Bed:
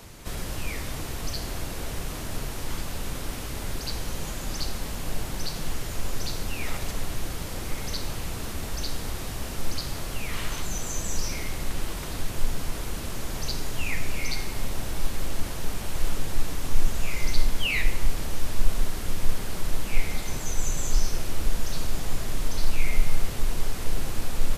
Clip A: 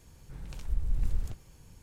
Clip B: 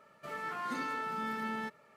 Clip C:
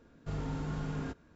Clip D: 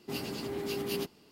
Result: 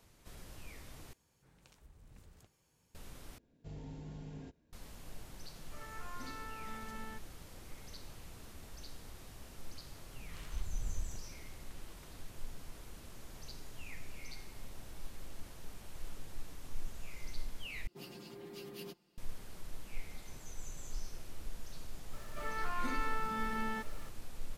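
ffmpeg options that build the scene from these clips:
-filter_complex "[1:a]asplit=2[s0][s1];[2:a]asplit=2[s2][s3];[0:a]volume=0.112[s4];[s0]highpass=f=310:p=1[s5];[3:a]equalizer=f=1300:w=2.4:g=-15[s6];[4:a]aecho=1:1:5.7:0.83[s7];[s3]aeval=exprs='val(0)+0.5*0.00251*sgn(val(0))':c=same[s8];[s4]asplit=4[s9][s10][s11][s12];[s9]atrim=end=1.134[s13];[s5]atrim=end=1.82,asetpts=PTS-STARTPTS,volume=0.237[s14];[s10]atrim=start=2.946:end=3.384[s15];[s6]atrim=end=1.35,asetpts=PTS-STARTPTS,volume=0.299[s16];[s11]atrim=start=4.726:end=17.874[s17];[s7]atrim=end=1.31,asetpts=PTS-STARTPTS,volume=0.178[s18];[s12]atrim=start=19.176[s19];[s2]atrim=end=1.96,asetpts=PTS-STARTPTS,volume=0.282,afade=t=in:d=0.004:c=hsin,afade=t=out:st=1.956:d=0.004:c=hsin,adelay=242109S[s20];[s1]atrim=end=1.82,asetpts=PTS-STARTPTS,volume=0.335,afade=t=in:d=0.004:c=hsin,afade=t=out:st=1.816:d=0.004:c=hsin,adelay=9840[s21];[s8]atrim=end=1.96,asetpts=PTS-STARTPTS,volume=0.794,afade=t=in:d=0.004:c=hsin,afade=t=out:st=1.956:d=0.004:c=hsin,adelay=22130[s22];[s13][s14]acrossfade=d=0.004:c1=hsin:c2=hsin[s23];[s23][s15]acrossfade=d=0.004:c1=hsin:c2=hsin[s24];[s24][s16]acrossfade=d=0.004:c1=hsin:c2=hsin[s25];[s25][s17]acrossfade=d=0.004:c1=hsin:c2=hsin[s26];[s26][s18]acrossfade=d=0.004:c1=hsin:c2=hsin[s27];[s27][s19]acrossfade=d=0.004:c1=hsin:c2=hsin[s28];[s28][s20][s21][s22]amix=inputs=4:normalize=0"

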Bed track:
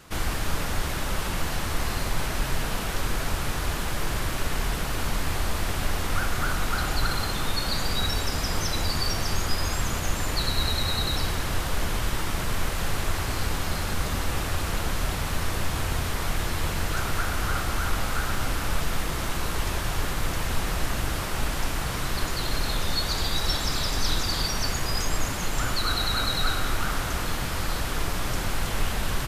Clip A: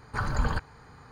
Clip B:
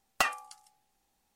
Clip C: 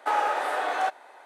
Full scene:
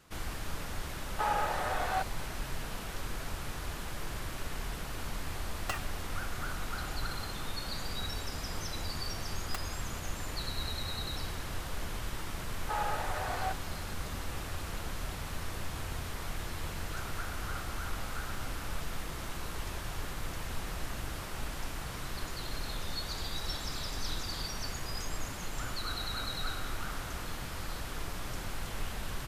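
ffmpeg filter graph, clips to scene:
-filter_complex "[3:a]asplit=2[s0][s1];[2:a]asplit=2[s2][s3];[0:a]volume=0.282[s4];[s2]acrusher=bits=5:mix=0:aa=0.5[s5];[s3]acrusher=bits=2:mix=0:aa=0.5[s6];[s0]atrim=end=1.25,asetpts=PTS-STARTPTS,volume=0.473,afade=t=in:d=0.004:c=hsin,afade=t=out:st=1.246:d=0.004:c=hsin,adelay=1130[s7];[s5]atrim=end=1.35,asetpts=PTS-STARTPTS,volume=0.316,afade=t=in:d=0.004:c=hsin,afade=t=out:st=1.346:d=0.004:c=hsin,adelay=242109S[s8];[s6]atrim=end=1.35,asetpts=PTS-STARTPTS,volume=0.422,afade=t=in:d=0.004:c=hsin,afade=t=out:st=1.346:d=0.004:c=hsin,adelay=9340[s9];[s1]atrim=end=1.25,asetpts=PTS-STARTPTS,volume=0.335,afade=t=in:d=0.004:c=hsin,afade=t=out:st=1.246:d=0.004:c=hsin,adelay=12630[s10];[s4][s7][s8][s9][s10]amix=inputs=5:normalize=0"

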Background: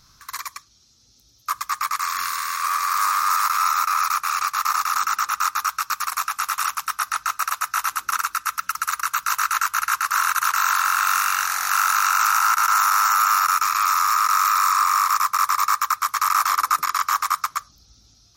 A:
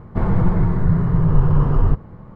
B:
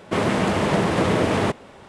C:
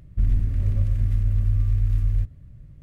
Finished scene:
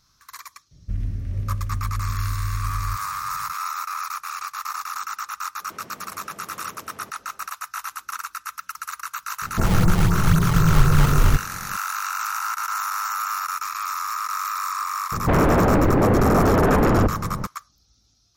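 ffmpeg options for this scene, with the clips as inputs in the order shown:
-filter_complex "[1:a]asplit=2[s0][s1];[0:a]volume=0.376[s2];[3:a]highpass=f=71:p=1[s3];[2:a]acompressor=threshold=0.0282:ratio=6:attack=3.2:release=140:knee=1:detection=peak[s4];[s0]acrusher=samples=25:mix=1:aa=0.000001:lfo=1:lforange=40:lforate=3.9[s5];[s1]aeval=exprs='0.75*sin(PI/2*7.94*val(0)/0.75)':c=same[s6];[s3]atrim=end=2.82,asetpts=PTS-STARTPTS,volume=0.841,afade=t=in:d=0.004:c=hsin,afade=t=out:st=2.816:d=0.004:c=hsin,adelay=710[s7];[s4]atrim=end=1.88,asetpts=PTS-STARTPTS,volume=0.237,afade=t=in:d=0.004:c=hsin,afade=t=out:st=1.876:d=0.004:c=hsin,adelay=5590[s8];[s5]atrim=end=2.35,asetpts=PTS-STARTPTS,volume=0.891,afade=t=in:d=0.004:c=hsin,afade=t=out:st=2.346:d=0.004:c=hsin,adelay=9420[s9];[s6]atrim=end=2.35,asetpts=PTS-STARTPTS,volume=0.282,afade=t=in:d=0.004:c=hsin,afade=t=out:st=2.346:d=0.004:c=hsin,adelay=15120[s10];[s2][s7][s8][s9][s10]amix=inputs=5:normalize=0"

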